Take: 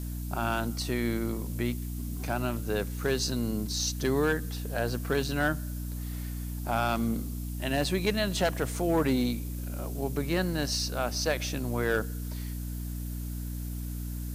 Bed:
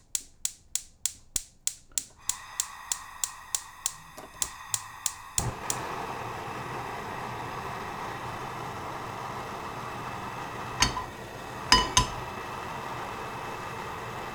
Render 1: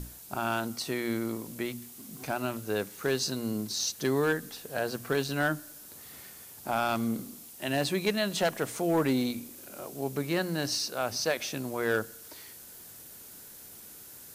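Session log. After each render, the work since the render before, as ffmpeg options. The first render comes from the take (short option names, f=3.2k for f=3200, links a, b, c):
-af "bandreject=f=60:t=h:w=6,bandreject=f=120:t=h:w=6,bandreject=f=180:t=h:w=6,bandreject=f=240:t=h:w=6,bandreject=f=300:t=h:w=6"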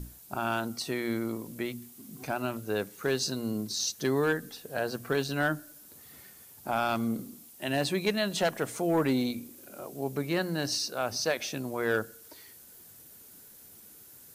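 -af "afftdn=nr=6:nf=-49"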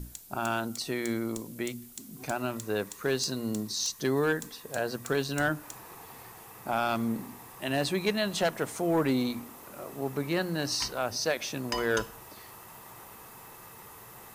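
-filter_complex "[1:a]volume=-14.5dB[a];[0:a][a]amix=inputs=2:normalize=0"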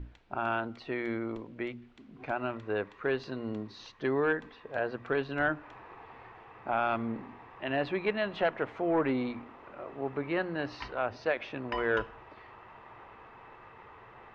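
-af "lowpass=f=2.7k:w=0.5412,lowpass=f=2.7k:w=1.3066,equalizer=f=170:t=o:w=1.1:g=-8"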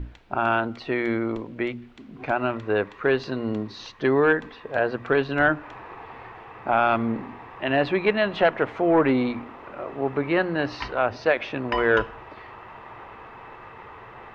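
-af "volume=9dB"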